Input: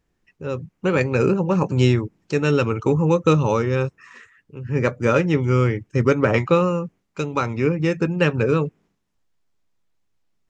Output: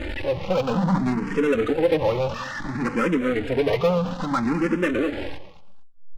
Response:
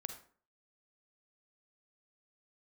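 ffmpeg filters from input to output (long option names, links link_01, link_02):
-filter_complex "[0:a]aeval=exprs='val(0)+0.5*0.0596*sgn(val(0))':channel_layout=same,lowpass=3000,bandreject=frequency=700:width=12,aeval=exprs='(tanh(7.08*val(0)+0.1)-tanh(0.1))/7.08':channel_layout=same,flanger=delay=3.3:depth=1.1:regen=-4:speed=0.24:shape=triangular,atempo=1.7,bandreject=frequency=50:width_type=h:width=6,bandreject=frequency=100:width_type=h:width=6,bandreject=frequency=150:width_type=h:width=6,bandreject=frequency=200:width_type=h:width=6,asplit=2[link_01][link_02];[link_02]aeval=exprs='0.0251*(abs(mod(val(0)/0.0251+3,4)-2)-1)':channel_layout=same,volume=-9dB[link_03];[link_01][link_03]amix=inputs=2:normalize=0,aecho=1:1:226|452:0.178|0.032,asplit=2[link_04][link_05];[link_05]afreqshift=0.59[link_06];[link_04][link_06]amix=inputs=2:normalize=1,volume=6.5dB"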